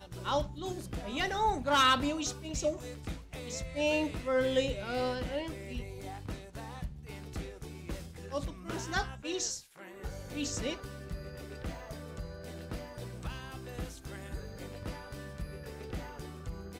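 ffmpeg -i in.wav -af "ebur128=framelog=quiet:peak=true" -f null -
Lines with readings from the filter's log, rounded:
Integrated loudness:
  I:         -35.7 LUFS
  Threshold: -45.8 LUFS
Loudness range:
  LRA:        12.2 LU
  Threshold: -56.1 LUFS
  LRA low:   -43.3 LUFS
  LRA high:  -31.1 LUFS
True peak:
  Peak:      -15.3 dBFS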